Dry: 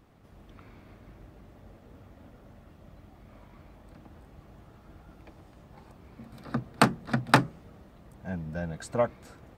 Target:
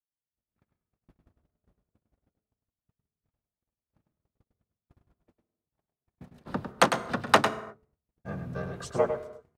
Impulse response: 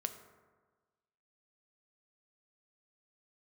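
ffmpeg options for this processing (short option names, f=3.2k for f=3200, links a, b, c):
-filter_complex "[0:a]acrossover=split=340[a][b];[a]acompressor=threshold=-37dB:ratio=5[c];[c][b]amix=inputs=2:normalize=0,afreqshift=13,asplit=2[d][e];[e]asetrate=33038,aresample=44100,atempo=1.33484,volume=0dB[f];[d][f]amix=inputs=2:normalize=0,agate=range=-51dB:threshold=-42dB:ratio=16:detection=peak,asplit=2[g][h];[1:a]atrim=start_sample=2205,afade=t=out:st=0.31:d=0.01,atrim=end_sample=14112,adelay=102[i];[h][i]afir=irnorm=-1:irlink=0,volume=-7dB[j];[g][j]amix=inputs=2:normalize=0,volume=-2dB"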